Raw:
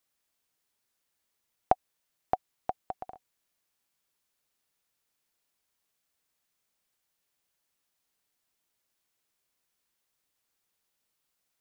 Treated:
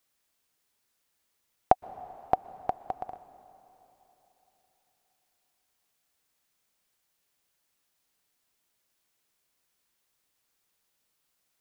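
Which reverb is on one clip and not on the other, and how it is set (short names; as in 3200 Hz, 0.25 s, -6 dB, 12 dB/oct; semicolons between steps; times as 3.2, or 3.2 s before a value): plate-style reverb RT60 3.8 s, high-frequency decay 0.95×, pre-delay 0.105 s, DRR 16.5 dB; gain +3.5 dB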